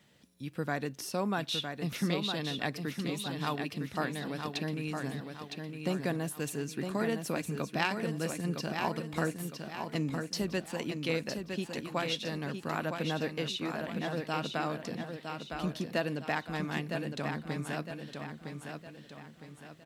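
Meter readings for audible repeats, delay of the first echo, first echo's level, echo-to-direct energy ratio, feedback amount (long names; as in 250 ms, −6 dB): 4, 960 ms, −6.0 dB, −5.0 dB, 42%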